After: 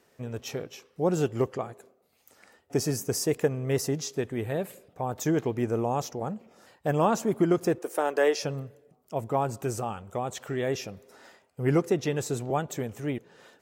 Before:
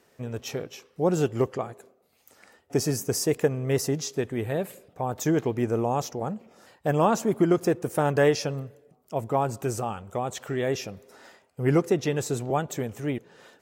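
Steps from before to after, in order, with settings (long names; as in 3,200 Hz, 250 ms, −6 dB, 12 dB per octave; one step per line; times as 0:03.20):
0:07.78–0:08.43: high-pass filter 320 Hz 24 dB per octave
level −2 dB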